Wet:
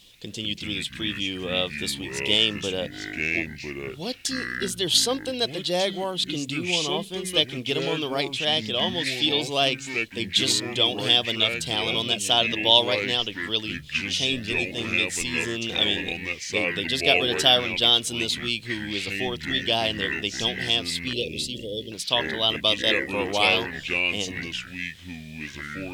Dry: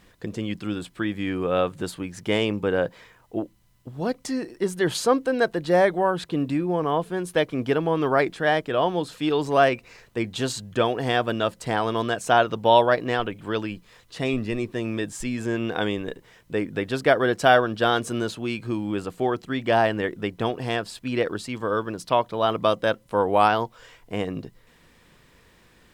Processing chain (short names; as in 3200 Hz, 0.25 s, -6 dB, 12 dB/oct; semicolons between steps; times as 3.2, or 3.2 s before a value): resonant high shelf 2300 Hz +12.5 dB, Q 3; echoes that change speed 0.121 s, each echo -5 st, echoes 2, each echo -6 dB; 21.13–21.92 Chebyshev band-stop 530–3100 Hz, order 3; gain -6 dB